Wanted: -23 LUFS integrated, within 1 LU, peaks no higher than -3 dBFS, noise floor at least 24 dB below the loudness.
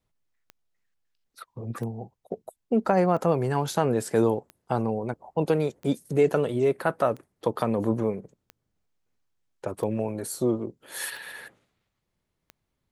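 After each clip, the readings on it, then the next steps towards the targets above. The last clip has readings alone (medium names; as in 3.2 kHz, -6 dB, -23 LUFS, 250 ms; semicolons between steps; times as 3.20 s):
clicks found 10; loudness -27.0 LUFS; peak level -7.0 dBFS; loudness target -23.0 LUFS
-> de-click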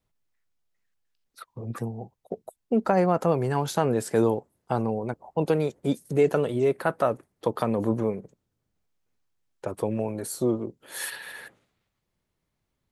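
clicks found 0; loudness -26.5 LUFS; peak level -7.0 dBFS; loudness target -23.0 LUFS
-> trim +3.5 dB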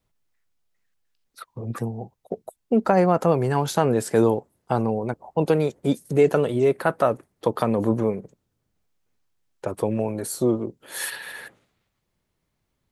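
loudness -23.0 LUFS; peak level -3.5 dBFS; noise floor -76 dBFS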